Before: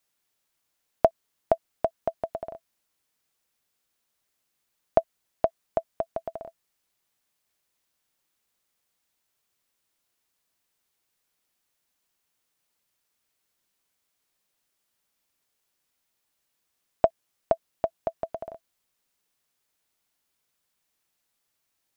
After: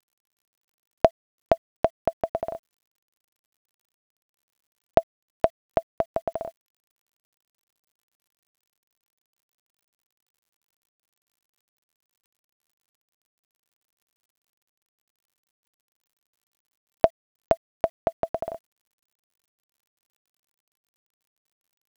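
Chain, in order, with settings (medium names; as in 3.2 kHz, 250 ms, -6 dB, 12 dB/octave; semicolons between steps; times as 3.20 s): in parallel at +2.5 dB: compression 12:1, threshold -31 dBFS, peak gain reduction 18.5 dB; on the sum: word length cut 10-bit, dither none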